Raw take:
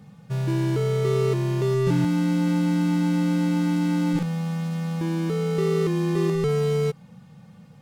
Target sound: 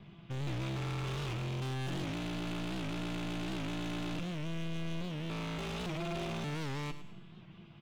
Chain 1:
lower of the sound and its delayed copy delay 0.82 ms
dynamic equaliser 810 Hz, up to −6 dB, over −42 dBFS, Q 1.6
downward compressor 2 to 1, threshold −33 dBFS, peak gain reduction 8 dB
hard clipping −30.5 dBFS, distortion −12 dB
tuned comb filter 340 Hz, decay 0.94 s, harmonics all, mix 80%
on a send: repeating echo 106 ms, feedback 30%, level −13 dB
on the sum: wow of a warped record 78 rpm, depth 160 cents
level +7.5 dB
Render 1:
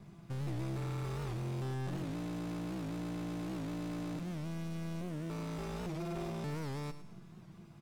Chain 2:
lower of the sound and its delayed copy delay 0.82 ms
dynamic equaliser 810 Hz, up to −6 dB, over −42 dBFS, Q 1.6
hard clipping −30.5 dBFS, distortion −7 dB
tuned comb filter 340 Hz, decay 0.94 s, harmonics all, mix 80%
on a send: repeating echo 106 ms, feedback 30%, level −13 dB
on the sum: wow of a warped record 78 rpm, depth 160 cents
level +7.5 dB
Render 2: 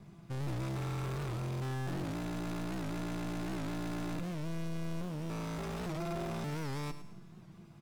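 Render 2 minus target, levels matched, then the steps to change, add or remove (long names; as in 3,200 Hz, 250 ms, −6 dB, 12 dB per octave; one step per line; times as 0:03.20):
4,000 Hz band −6.0 dB
add after dynamic equaliser: low-pass with resonance 3,100 Hz, resonance Q 4.3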